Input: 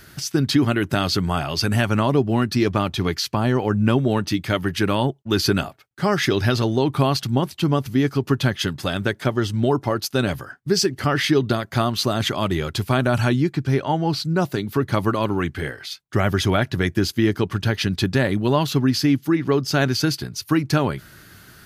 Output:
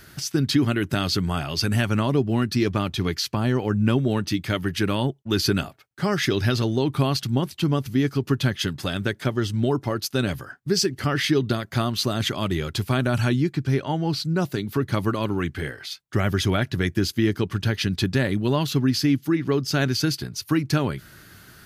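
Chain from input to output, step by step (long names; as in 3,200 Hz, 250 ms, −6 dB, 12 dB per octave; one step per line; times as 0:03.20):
dynamic equaliser 810 Hz, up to −5 dB, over −34 dBFS, Q 0.88
level −1.5 dB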